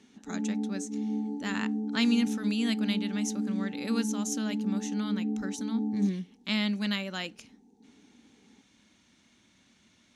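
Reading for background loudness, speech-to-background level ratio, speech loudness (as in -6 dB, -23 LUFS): -33.5 LUFS, 1.5 dB, -32.0 LUFS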